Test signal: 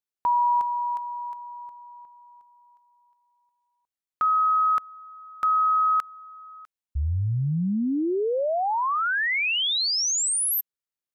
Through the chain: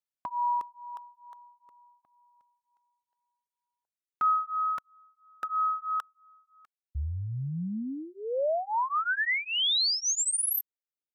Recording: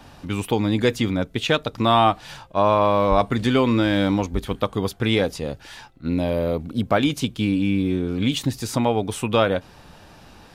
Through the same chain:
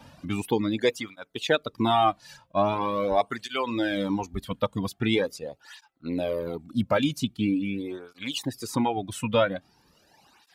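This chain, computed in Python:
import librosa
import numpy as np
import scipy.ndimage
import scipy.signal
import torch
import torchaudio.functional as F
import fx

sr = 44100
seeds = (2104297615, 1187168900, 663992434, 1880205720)

y = fx.dereverb_blind(x, sr, rt60_s=1.5)
y = fx.flanger_cancel(y, sr, hz=0.43, depth_ms=2.8)
y = F.gain(torch.from_numpy(y), -1.0).numpy()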